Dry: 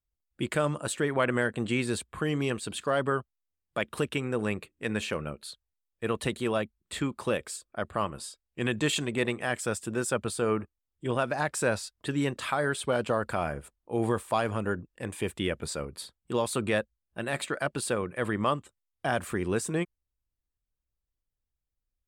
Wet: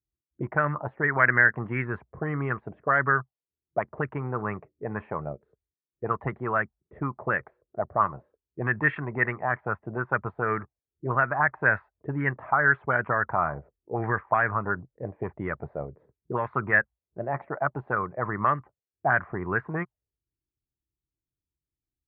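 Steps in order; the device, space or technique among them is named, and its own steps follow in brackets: envelope filter bass rig (touch-sensitive low-pass 330–1700 Hz up, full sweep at -23 dBFS; cabinet simulation 62–2200 Hz, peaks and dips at 130 Hz +5 dB, 230 Hz -6 dB, 330 Hz -4 dB, 510 Hz -7 dB, 2 kHz +8 dB)

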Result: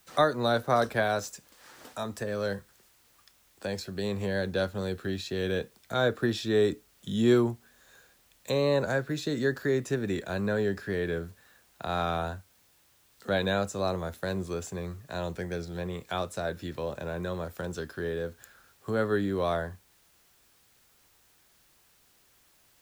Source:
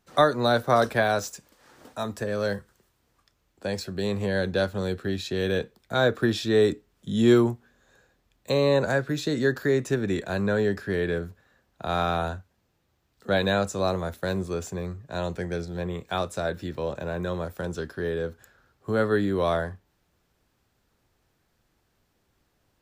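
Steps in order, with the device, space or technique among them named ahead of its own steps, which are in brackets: noise-reduction cassette on a plain deck (tape noise reduction on one side only encoder only; wow and flutter 28 cents; white noise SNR 34 dB); trim -4 dB

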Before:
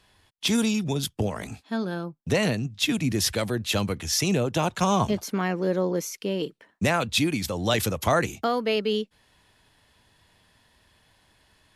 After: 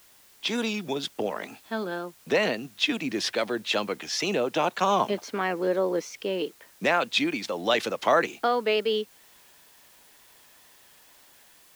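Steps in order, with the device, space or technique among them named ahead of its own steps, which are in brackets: high-pass 140 Hz; dictaphone (band-pass 330–4100 Hz; level rider gain up to 7 dB; wow and flutter; white noise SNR 28 dB); trim -5 dB

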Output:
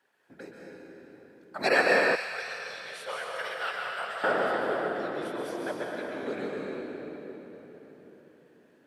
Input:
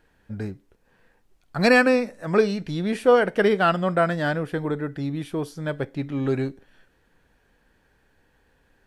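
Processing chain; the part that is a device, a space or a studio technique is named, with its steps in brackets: whispering ghost (whisper effect; high-pass 450 Hz 12 dB/octave; reverberation RT60 4.3 s, pre-delay 118 ms, DRR -2.5 dB); 2.15–4.24 s: amplifier tone stack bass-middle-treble 10-0-10; trim -6 dB

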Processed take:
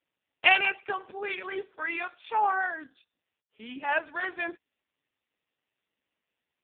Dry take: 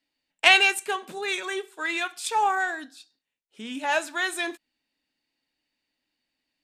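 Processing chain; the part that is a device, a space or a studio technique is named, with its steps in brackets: 1.18–2.28 s: hum notches 50/100/150/200/250/300 Hz; 2.83–3.91 s: dynamic bell 550 Hz, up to -5 dB, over -50 dBFS, Q 3.4; telephone (band-pass 300–3100 Hz; trim -1.5 dB; AMR-NB 4.75 kbps 8 kHz)

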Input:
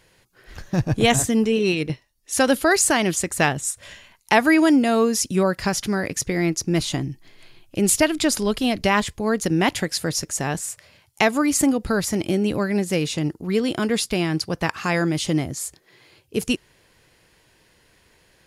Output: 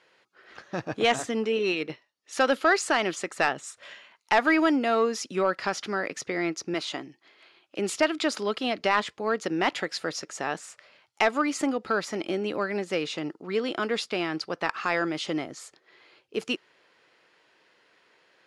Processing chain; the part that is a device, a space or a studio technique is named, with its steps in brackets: intercom (band-pass 360–4100 Hz; peaking EQ 1.3 kHz +6.5 dB 0.22 oct; saturation -8 dBFS, distortion -18 dB); 6.74–7.79 s: high-pass 290 Hz 6 dB/octave; trim -2.5 dB

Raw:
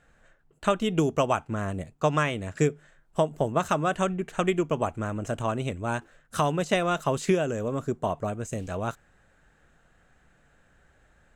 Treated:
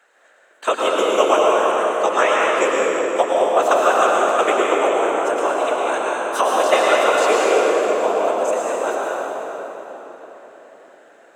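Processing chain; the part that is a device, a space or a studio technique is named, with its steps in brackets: whispering ghost (whisper effect; high-pass 410 Hz 24 dB/octave; reverberation RT60 4.4 s, pre-delay 97 ms, DRR -4 dB); trim +6.5 dB

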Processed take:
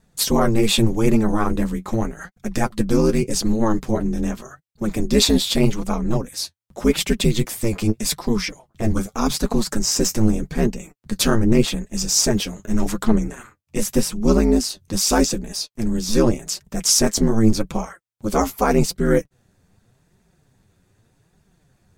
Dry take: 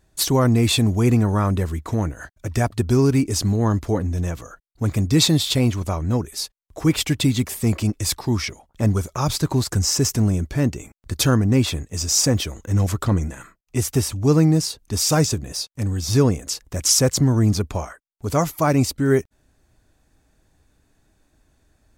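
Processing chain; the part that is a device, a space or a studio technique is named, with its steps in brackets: alien voice (ring modulator 110 Hz; flange 0.84 Hz, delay 4.3 ms, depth 7.2 ms, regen +36%); trim +7.5 dB

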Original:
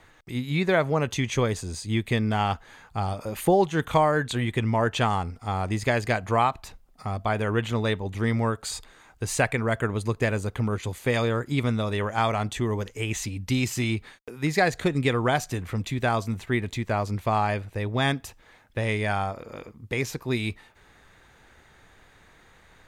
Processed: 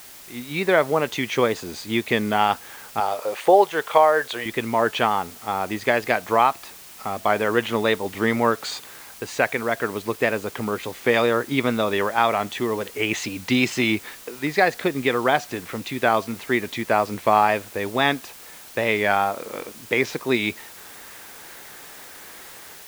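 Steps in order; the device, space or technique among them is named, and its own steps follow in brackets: dictaphone (band-pass 280–4100 Hz; level rider gain up to 13.5 dB; wow and flutter; white noise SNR 20 dB); 3.00–4.46 s: resonant low shelf 350 Hz -9.5 dB, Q 1.5; trim -2.5 dB

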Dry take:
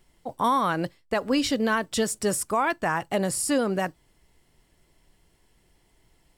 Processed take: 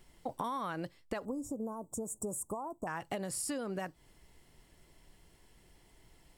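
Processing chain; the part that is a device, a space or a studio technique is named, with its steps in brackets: serial compression, peaks first (compression 5:1, threshold -32 dBFS, peak gain reduction 12 dB; compression 2:1, threshold -38 dBFS, peak gain reduction 5.5 dB); 1.25–2.87 s: elliptic band-stop 970–7300 Hz, stop band 40 dB; trim +1 dB

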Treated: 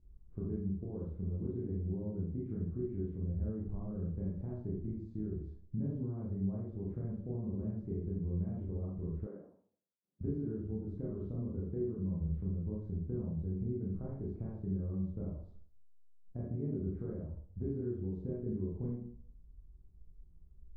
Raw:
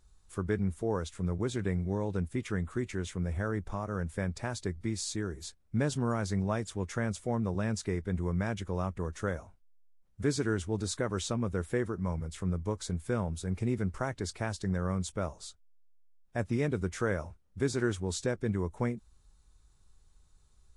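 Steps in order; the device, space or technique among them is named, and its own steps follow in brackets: television next door (compression 5:1, threshold -36 dBFS, peak gain reduction 11.5 dB; low-pass 260 Hz 12 dB/octave; reverberation RT60 0.55 s, pre-delay 23 ms, DRR -5.5 dB); 9.27–10.21 s: Bessel high-pass 330 Hz, order 4

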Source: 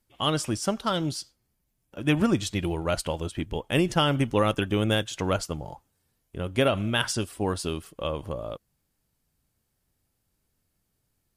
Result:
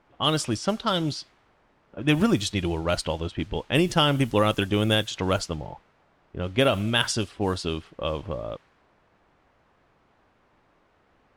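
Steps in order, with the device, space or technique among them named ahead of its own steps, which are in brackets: peaking EQ 3.9 kHz +4 dB 0.81 oct; cassette deck with a dynamic noise filter (white noise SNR 25 dB; level-controlled noise filter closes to 1.1 kHz, open at -20.5 dBFS); trim +1.5 dB

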